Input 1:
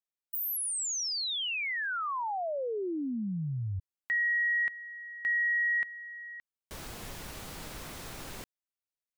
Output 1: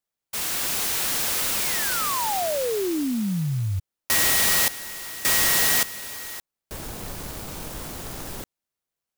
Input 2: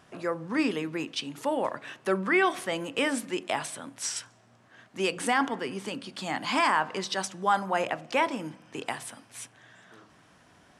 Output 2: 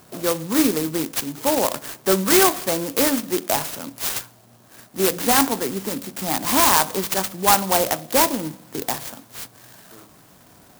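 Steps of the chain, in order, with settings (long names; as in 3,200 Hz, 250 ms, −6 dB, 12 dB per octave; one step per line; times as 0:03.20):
converter with an unsteady clock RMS 0.13 ms
level +8.5 dB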